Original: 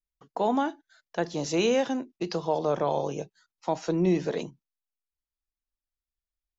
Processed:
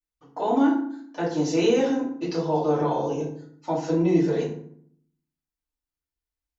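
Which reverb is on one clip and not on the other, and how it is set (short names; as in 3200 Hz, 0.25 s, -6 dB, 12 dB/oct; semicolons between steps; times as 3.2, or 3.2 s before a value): FDN reverb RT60 0.62 s, low-frequency decay 1.45×, high-frequency decay 0.6×, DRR -8 dB; gain -7 dB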